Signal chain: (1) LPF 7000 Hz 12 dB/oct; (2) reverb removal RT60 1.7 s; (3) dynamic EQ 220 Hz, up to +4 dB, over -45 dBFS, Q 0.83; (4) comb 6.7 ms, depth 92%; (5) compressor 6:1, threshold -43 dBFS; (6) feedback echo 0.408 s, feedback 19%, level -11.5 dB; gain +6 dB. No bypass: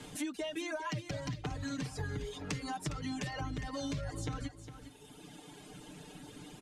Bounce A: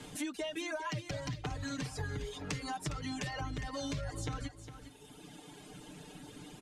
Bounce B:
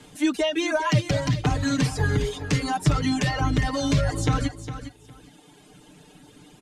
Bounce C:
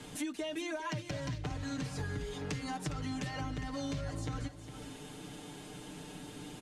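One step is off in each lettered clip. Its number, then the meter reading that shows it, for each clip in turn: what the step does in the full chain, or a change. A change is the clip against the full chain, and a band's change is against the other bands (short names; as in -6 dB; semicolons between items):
3, 250 Hz band -2.0 dB; 5, mean gain reduction 11.5 dB; 2, crest factor change -3.5 dB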